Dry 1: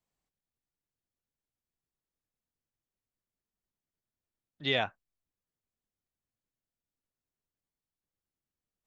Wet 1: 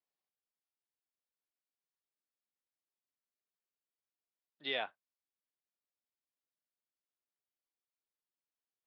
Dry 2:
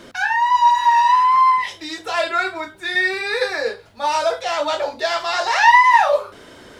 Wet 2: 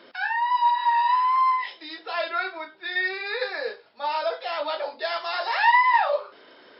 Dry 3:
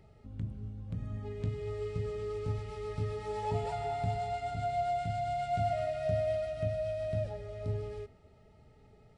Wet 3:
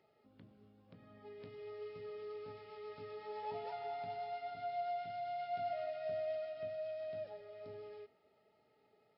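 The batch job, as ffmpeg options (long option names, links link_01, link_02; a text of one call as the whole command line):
ffmpeg -i in.wav -af "highpass=350,volume=-6.5dB" -ar 12000 -c:a libmp3lame -b:a 32k out.mp3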